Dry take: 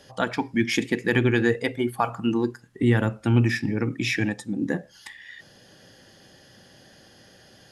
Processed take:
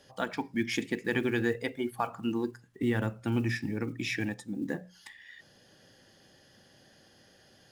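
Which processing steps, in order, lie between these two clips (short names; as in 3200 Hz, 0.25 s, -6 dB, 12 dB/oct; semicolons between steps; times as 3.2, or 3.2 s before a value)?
block floating point 7-bit; notches 60/120/180 Hz; gain -7.5 dB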